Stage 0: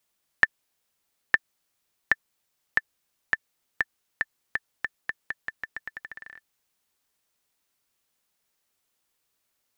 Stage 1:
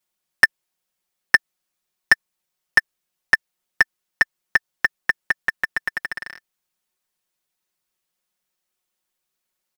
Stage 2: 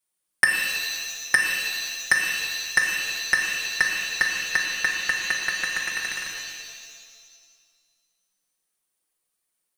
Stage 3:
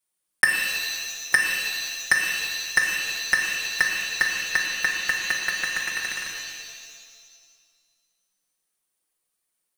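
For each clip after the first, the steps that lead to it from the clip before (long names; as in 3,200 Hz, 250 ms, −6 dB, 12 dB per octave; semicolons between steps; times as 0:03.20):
comb filter 5.5 ms, depth 88%; leveller curve on the samples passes 3
parametric band 9,400 Hz +14 dB 0.29 octaves; reverb with rising layers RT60 1.7 s, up +7 semitones, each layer −2 dB, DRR 1 dB; level −5.5 dB
one scale factor per block 5 bits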